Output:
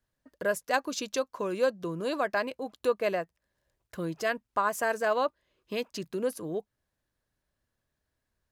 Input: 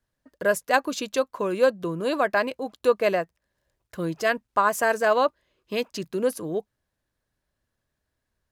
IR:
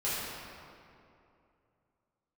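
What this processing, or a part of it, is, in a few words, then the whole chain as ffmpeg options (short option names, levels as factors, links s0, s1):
parallel compression: -filter_complex "[0:a]asplit=2[s0][s1];[s1]acompressor=threshold=0.02:ratio=6,volume=0.794[s2];[s0][s2]amix=inputs=2:normalize=0,asettb=1/sr,asplit=3[s3][s4][s5];[s3]atrim=end=0.644[s6];[s4]atrim=start=0.64:end=2.41,asetpts=PTS-STARTPTS,afade=t=in:d=0.004:c=qsin,afade=t=out:st=1.766:d=0.004:c=qsin,equalizer=f=5600:w=2.1:g=5.5[s7];[s5]atrim=start=2.406[s8];[s6][s7]acrossfade=d=0.004:c1=hsin:c2=qsin[s9];[s9][s8]acrossfade=d=0.004:c1=qsin:c2=hsin,volume=0.422"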